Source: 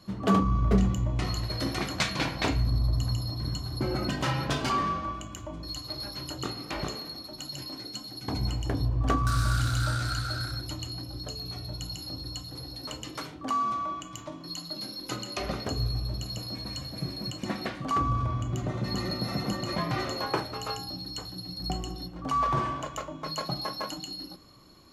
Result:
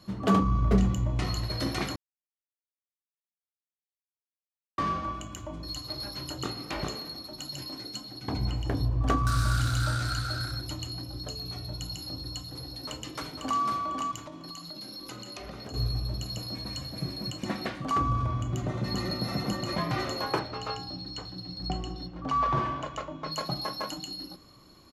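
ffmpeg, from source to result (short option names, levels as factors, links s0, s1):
-filter_complex "[0:a]asettb=1/sr,asplit=3[s0][s1][s2];[s0]atrim=end=8.014[s3];[s1]atrim=start=8.01:end=8.72,asetpts=PTS-STARTPTS,afade=t=in:d=0.004:c=qsin,afade=t=out:st=0.706:d=0.004:c=qsin,acrossover=split=4700[s4][s5];[s5]acompressor=threshold=0.00224:ratio=4:attack=1:release=60[s6];[s4][s6]amix=inputs=2:normalize=0[s7];[s2]atrim=start=8.716[s8];[s3][s7]acrossfade=d=0.004:c1=hsin:c2=qsin[s9];[s9][s8]acrossfade=d=0.004:c1=qsin:c2=hsin,asplit=2[s10][s11];[s11]afade=t=in:st=12.71:d=0.01,afade=t=out:st=13.61:d=0.01,aecho=0:1:500|1000|1500:0.595662|0.148916|0.0372289[s12];[s10][s12]amix=inputs=2:normalize=0,asettb=1/sr,asplit=3[s13][s14][s15];[s13]atrim=end=14.254[s16];[s14]atrim=start=14.25:end=15.74,asetpts=PTS-STARTPTS,afade=t=in:d=0.004:c=qsin,afade=t=out:st=1.486:d=0.004:c=qsin,acompressor=threshold=0.0126:ratio=5:attack=3.2:release=140:knee=1:detection=peak[s17];[s15]atrim=start=15.736[s18];[s16][s17]acrossfade=d=0.004:c1=hsin:c2=qsin[s19];[s19][s18]acrossfade=d=0.004:c1=qsin:c2=hsin,asettb=1/sr,asplit=3[s20][s21][s22];[s20]atrim=end=20.394[s23];[s21]atrim=start=20.39:end=23.32,asetpts=PTS-STARTPTS,afade=t=in:d=0.004:c=qsin,afade=t=out:st=2.926:d=0.004:c=qsin,lowpass=5000[s24];[s22]atrim=start=23.316[s25];[s23][s24]acrossfade=d=0.004:c1=hsin:c2=qsin[s26];[s26][s25]acrossfade=d=0.004:c1=qsin:c2=hsin,asplit=3[s27][s28][s29];[s27]atrim=end=1.96,asetpts=PTS-STARTPTS,afade=t=out:st=1.956:d=0.004:c=hsin[s30];[s28]atrim=start=1.96:end=4.78,asetpts=PTS-STARTPTS,volume=0[s31];[s29]atrim=start=4.78,asetpts=PTS-STARTPTS,afade=t=in:d=0.004:c=hsin[s32];[s30][s31][s32]concat=n=3:v=0:a=1"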